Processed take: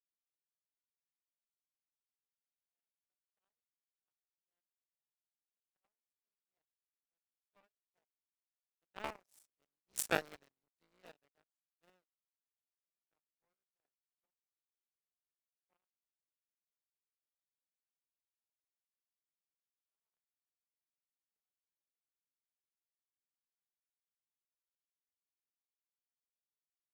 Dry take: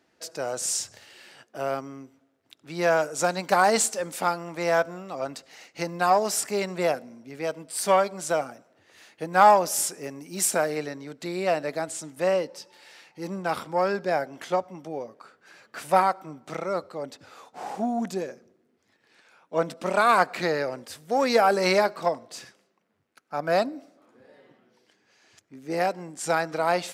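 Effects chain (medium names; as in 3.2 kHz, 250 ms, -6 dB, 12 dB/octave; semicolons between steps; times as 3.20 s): cycle switcher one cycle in 3, muted; Doppler pass-by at 10.21 s, 15 m/s, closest 5.9 m; power-law waveshaper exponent 3; crackling interface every 0.14 s, samples 128, repeat, from 0.69 s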